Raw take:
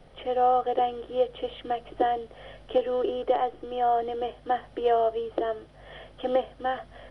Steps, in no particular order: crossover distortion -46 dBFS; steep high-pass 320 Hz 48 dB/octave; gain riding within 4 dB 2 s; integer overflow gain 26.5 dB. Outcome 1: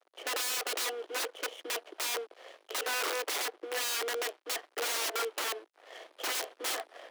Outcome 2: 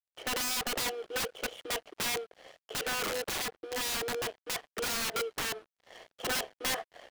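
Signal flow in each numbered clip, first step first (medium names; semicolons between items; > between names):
gain riding > integer overflow > crossover distortion > steep high-pass; steep high-pass > integer overflow > gain riding > crossover distortion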